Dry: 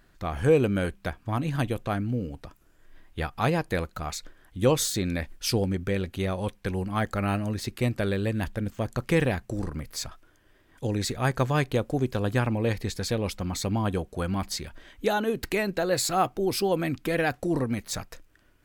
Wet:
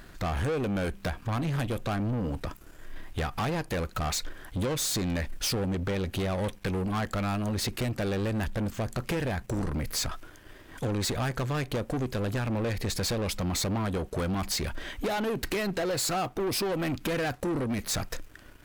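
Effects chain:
downward compressor, threshold −31 dBFS, peak gain reduction 15 dB
soft clipping −29.5 dBFS, distortion −15 dB
leveller curve on the samples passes 2
level +4.5 dB

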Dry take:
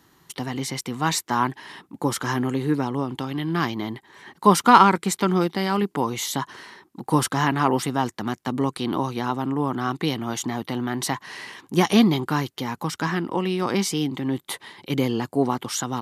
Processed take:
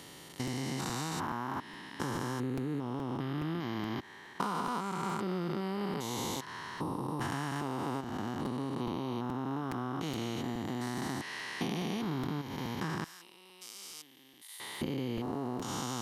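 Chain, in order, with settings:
spectrum averaged block by block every 400 ms
downward compressor 6 to 1, threshold −32 dBFS, peak gain reduction 14.5 dB
0:13.04–0:14.60: first difference
regular buffer underruns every 0.42 s, samples 256, repeat, from 0:00.47

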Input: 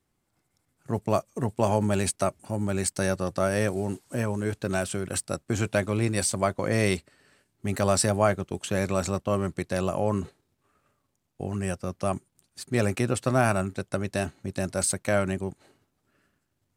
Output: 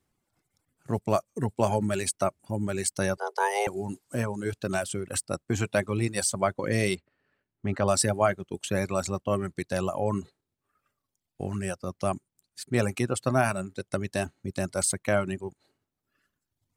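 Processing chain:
reverb reduction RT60 1.3 s
0:03.17–0:03.67: frequency shifter +300 Hz
0:06.95–0:07.88: low-pass filter 2,600 Hz 12 dB per octave

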